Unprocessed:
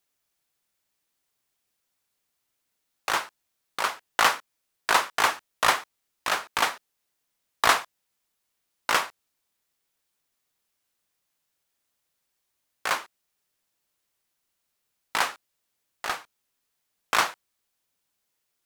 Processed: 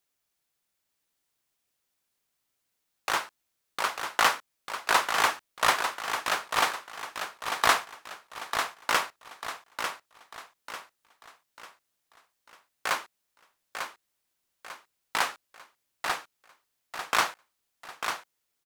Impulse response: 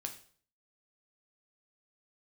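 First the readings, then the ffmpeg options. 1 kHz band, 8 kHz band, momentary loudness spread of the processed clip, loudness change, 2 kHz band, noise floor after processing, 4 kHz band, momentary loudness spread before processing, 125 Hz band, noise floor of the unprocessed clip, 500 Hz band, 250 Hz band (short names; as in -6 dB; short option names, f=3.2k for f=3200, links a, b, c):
-1.0 dB, -1.0 dB, 20 LU, -2.5 dB, -1.0 dB, -80 dBFS, -1.0 dB, 13 LU, -1.0 dB, -79 dBFS, -1.0 dB, -1.0 dB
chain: -af "aecho=1:1:896|1792|2688|3584|4480:0.447|0.179|0.0715|0.0286|0.0114,volume=-2dB"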